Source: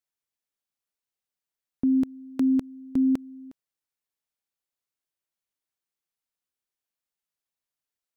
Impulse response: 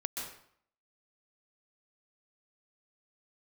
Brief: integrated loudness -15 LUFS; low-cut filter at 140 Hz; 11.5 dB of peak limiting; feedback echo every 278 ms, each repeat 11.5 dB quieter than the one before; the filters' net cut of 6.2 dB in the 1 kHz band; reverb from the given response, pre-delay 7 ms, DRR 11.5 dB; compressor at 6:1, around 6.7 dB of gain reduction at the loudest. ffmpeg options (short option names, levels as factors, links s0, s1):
-filter_complex "[0:a]highpass=140,equalizer=f=1000:t=o:g=-8.5,acompressor=threshold=0.0447:ratio=6,alimiter=level_in=2:limit=0.0631:level=0:latency=1,volume=0.501,aecho=1:1:278|556|834:0.266|0.0718|0.0194,asplit=2[s0][s1];[1:a]atrim=start_sample=2205,adelay=7[s2];[s1][s2]afir=irnorm=-1:irlink=0,volume=0.211[s3];[s0][s3]amix=inputs=2:normalize=0,volume=11.2"